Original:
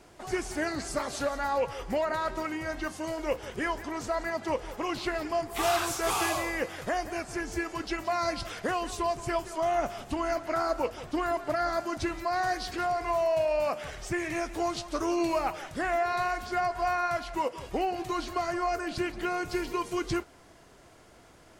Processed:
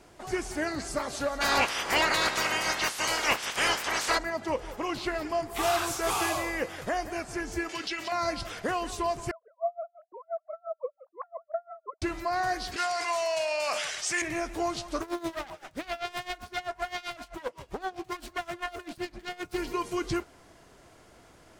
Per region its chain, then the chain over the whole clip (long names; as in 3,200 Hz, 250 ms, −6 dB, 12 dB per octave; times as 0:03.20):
0:01.40–0:04.17: ceiling on every frequency bin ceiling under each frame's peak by 25 dB + mid-hump overdrive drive 13 dB, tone 7,600 Hz, clips at −14.5 dBFS
0:07.69–0:08.12: meter weighting curve D + downward compressor 4 to 1, threshold −30 dBFS
0:09.31–0:12.02: three sine waves on the formant tracks + Chebyshev low-pass filter 1,100 Hz, order 3 + tremolo with a sine in dB 5.8 Hz, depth 35 dB
0:12.76–0:14.22: meter weighting curve ITU-R 468 + hard clipping −19.5 dBFS + level that may fall only so fast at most 31 dB per second
0:15.01–0:19.58: phase distortion by the signal itself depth 0.35 ms + tremolo with a sine in dB 7.7 Hz, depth 20 dB
whole clip: no processing